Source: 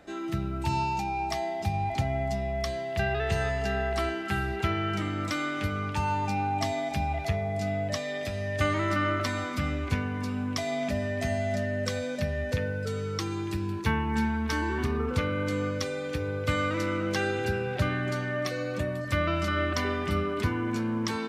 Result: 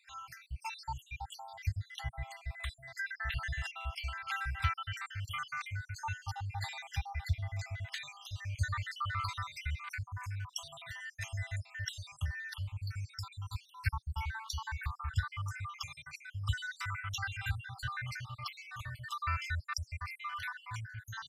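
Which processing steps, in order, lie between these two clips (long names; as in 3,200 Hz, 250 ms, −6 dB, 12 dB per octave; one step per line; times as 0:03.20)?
time-frequency cells dropped at random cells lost 68%
inverse Chebyshev band-stop filter 210–530 Hz, stop band 50 dB
level −1.5 dB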